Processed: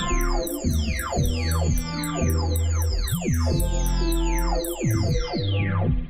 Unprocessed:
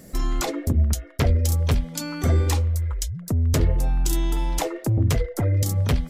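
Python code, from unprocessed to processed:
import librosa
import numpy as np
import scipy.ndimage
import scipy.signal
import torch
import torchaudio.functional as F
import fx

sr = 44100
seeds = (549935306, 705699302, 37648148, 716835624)

y = fx.spec_delay(x, sr, highs='early', ms=981)
y = fx.rev_spring(y, sr, rt60_s=1.3, pass_ms=(49,), chirp_ms=75, drr_db=16.0)
y = fx.band_squash(y, sr, depth_pct=100)
y = y * librosa.db_to_amplitude(2.0)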